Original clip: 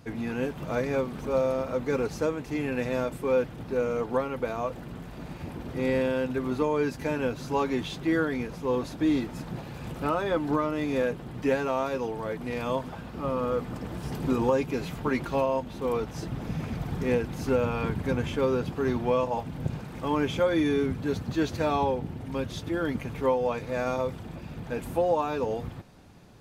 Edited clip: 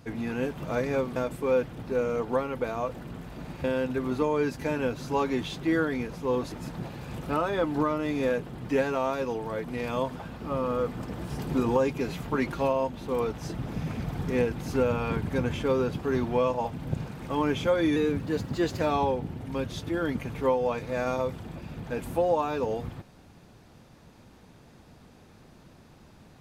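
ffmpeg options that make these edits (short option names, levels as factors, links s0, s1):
-filter_complex "[0:a]asplit=6[s0][s1][s2][s3][s4][s5];[s0]atrim=end=1.162[s6];[s1]atrim=start=2.968:end=5.452[s7];[s2]atrim=start=6.038:end=8.922[s8];[s3]atrim=start=9.248:end=20.694[s9];[s4]atrim=start=20.69:end=21.61,asetpts=PTS-STARTPTS,asetrate=47628,aresample=44100[s10];[s5]atrim=start=21.606[s11];[s6][s7]acrossfade=d=0.004:c1=hsin:c2=hsin[s12];[s12][s8]acrossfade=d=0.004:c1=hsin:c2=hsin[s13];[s13][s9]acrossfade=d=0.004:c1=hsin:c2=hsin[s14];[s14][s10]acrossfade=d=0.004:c1=hsin:c2=hsin[s15];[s15][s11]acrossfade=d=0.004:c1=hsin:c2=hsin"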